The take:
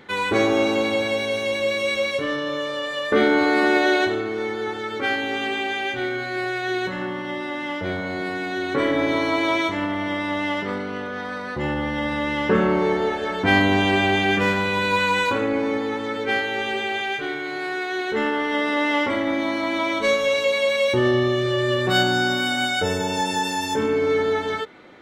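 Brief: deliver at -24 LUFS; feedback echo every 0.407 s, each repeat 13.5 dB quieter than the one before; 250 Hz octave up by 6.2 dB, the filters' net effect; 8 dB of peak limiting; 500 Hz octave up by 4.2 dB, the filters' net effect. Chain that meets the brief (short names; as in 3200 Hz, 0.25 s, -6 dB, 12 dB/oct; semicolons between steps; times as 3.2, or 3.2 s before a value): bell 250 Hz +7 dB; bell 500 Hz +3 dB; limiter -11 dBFS; feedback echo 0.407 s, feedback 21%, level -13.5 dB; gain -3.5 dB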